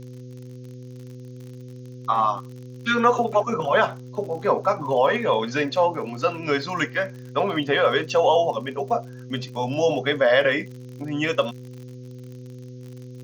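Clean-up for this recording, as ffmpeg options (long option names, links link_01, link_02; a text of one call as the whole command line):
ffmpeg -i in.wav -af "adeclick=threshold=4,bandreject=frequency=125.6:width_type=h:width=4,bandreject=frequency=251.2:width_type=h:width=4,bandreject=frequency=376.8:width_type=h:width=4,bandreject=frequency=502.4:width_type=h:width=4,agate=range=-21dB:threshold=-31dB" out.wav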